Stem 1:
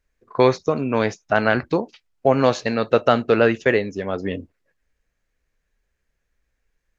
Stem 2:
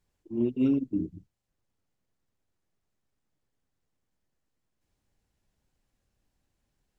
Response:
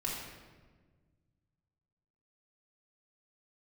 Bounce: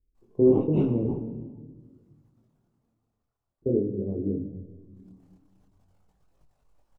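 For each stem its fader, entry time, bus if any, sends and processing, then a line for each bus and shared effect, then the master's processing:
0.0 dB, 0.00 s, muted 1.04–3.62 s, send -7 dB, inverse Chebyshev low-pass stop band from 1.7 kHz, stop band 70 dB
+2.0 dB, 0.15 s, send -17.5 dB, transient shaper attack +11 dB, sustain -9 dB; high-order bell 790 Hz +11 dB; whisper effect; auto duck -14 dB, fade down 1.10 s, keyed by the first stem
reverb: on, RT60 1.5 s, pre-delay 3 ms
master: chorus voices 2, 0.47 Hz, delay 23 ms, depth 3.9 ms

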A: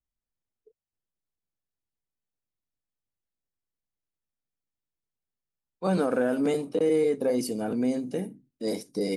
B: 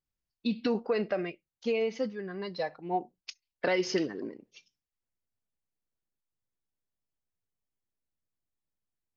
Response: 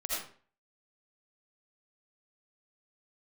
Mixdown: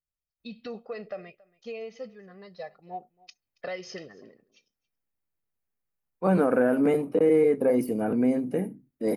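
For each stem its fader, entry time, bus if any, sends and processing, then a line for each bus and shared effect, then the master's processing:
+3.0 dB, 0.40 s, no send, no echo send, de-esser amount 70%; high-order bell 5.2 kHz -15.5 dB
-9.0 dB, 0.00 s, no send, echo send -23.5 dB, comb 1.6 ms, depth 61%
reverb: none
echo: delay 277 ms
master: none

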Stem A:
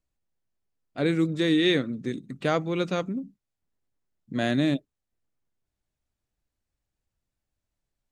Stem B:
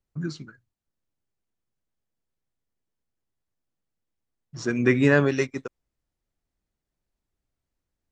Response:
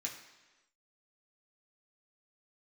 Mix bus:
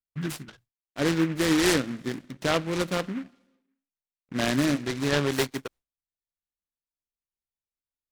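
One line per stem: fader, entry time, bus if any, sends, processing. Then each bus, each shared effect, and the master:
-1.0 dB, 0.00 s, send -14 dB, peaking EQ 1.8 kHz +4 dB 1 oct; crossover distortion -50 dBFS
-1.0 dB, 0.00 s, no send, gate with hold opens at -47 dBFS; treble shelf 2.7 kHz +9 dB; auto duck -13 dB, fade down 0.30 s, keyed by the first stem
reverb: on, RT60 1.2 s, pre-delay 3 ms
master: delay time shaken by noise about 1.6 kHz, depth 0.097 ms

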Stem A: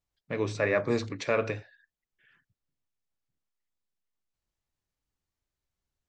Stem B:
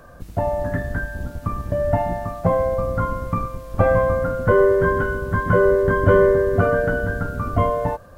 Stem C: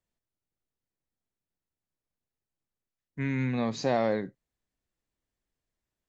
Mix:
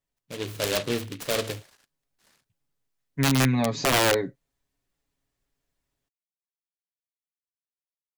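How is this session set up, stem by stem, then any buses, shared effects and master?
-6.0 dB, 0.00 s, no send, delay time shaken by noise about 2.7 kHz, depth 0.15 ms
mute
-3.0 dB, 0.00 s, no send, comb 7.2 ms, depth 90%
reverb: none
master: level rider gain up to 6 dB; integer overflow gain 14.5 dB

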